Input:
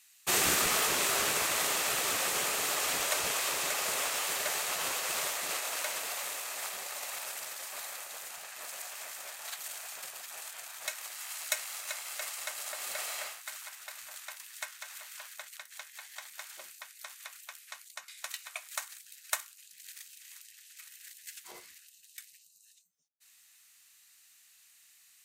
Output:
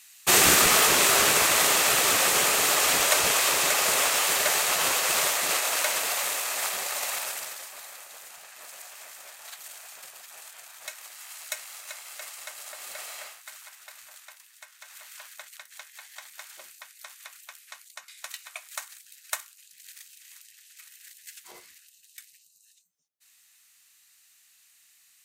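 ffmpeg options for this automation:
ffmpeg -i in.wav -af "volume=19dB,afade=type=out:start_time=7.09:duration=0.65:silence=0.281838,afade=type=out:start_time=14.02:duration=0.62:silence=0.446684,afade=type=in:start_time=14.64:duration=0.46:silence=0.316228" out.wav

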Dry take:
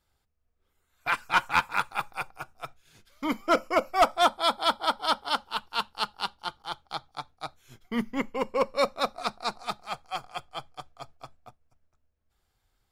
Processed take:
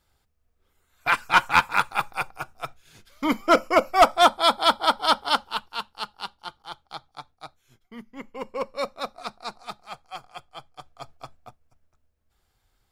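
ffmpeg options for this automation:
ffmpeg -i in.wav -af "volume=24.5dB,afade=type=out:start_time=5.35:duration=0.46:silence=0.375837,afade=type=out:start_time=7.3:duration=0.76:silence=0.251189,afade=type=in:start_time=8.06:duration=0.42:silence=0.281838,afade=type=in:start_time=10.71:duration=0.42:silence=0.398107" out.wav

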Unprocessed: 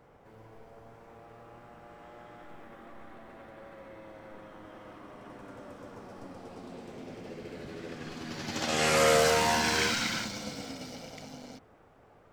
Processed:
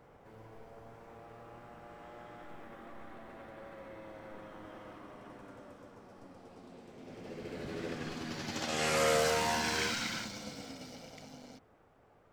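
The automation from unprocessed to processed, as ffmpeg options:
ffmpeg -i in.wav -af "volume=10dB,afade=type=out:start_time=4.7:duration=1.26:silence=0.421697,afade=type=in:start_time=6.96:duration=0.87:silence=0.298538,afade=type=out:start_time=7.83:duration=0.86:silence=0.398107" out.wav

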